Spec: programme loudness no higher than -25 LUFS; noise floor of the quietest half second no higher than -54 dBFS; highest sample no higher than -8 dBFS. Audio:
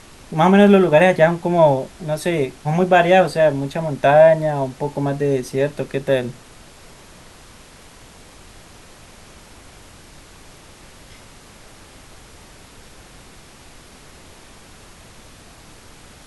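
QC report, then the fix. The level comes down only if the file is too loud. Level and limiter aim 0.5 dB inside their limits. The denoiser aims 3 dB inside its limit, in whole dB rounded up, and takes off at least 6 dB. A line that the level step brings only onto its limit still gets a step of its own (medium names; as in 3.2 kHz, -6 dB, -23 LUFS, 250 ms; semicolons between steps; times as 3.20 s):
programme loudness -16.5 LUFS: fail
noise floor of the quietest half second -44 dBFS: fail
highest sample -2.5 dBFS: fail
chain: noise reduction 6 dB, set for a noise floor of -44 dBFS; trim -9 dB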